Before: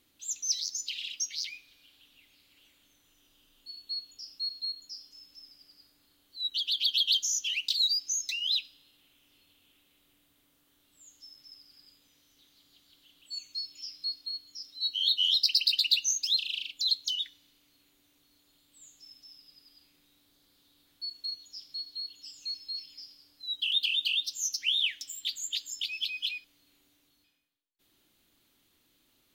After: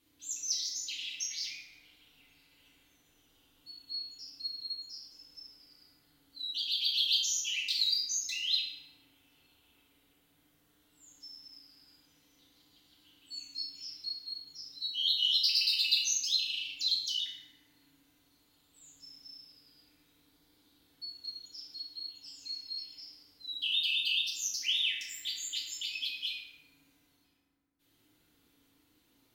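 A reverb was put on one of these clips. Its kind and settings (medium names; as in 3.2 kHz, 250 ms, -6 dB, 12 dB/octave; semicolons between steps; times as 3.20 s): FDN reverb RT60 2.1 s, low-frequency decay 1.35×, high-frequency decay 0.3×, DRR -7.5 dB; trim -7 dB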